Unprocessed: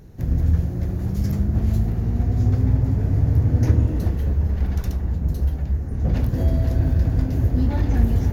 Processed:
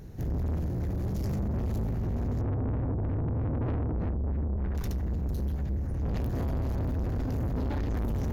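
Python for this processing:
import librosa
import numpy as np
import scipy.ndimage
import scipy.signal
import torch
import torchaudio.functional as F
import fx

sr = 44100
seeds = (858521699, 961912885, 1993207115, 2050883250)

y = fx.filter_lfo_lowpass(x, sr, shape='sine', hz=3.2, low_hz=480.0, high_hz=1900.0, q=1.1, at=(2.41, 4.75))
y = 10.0 ** (-27.5 / 20.0) * np.tanh(y / 10.0 ** (-27.5 / 20.0))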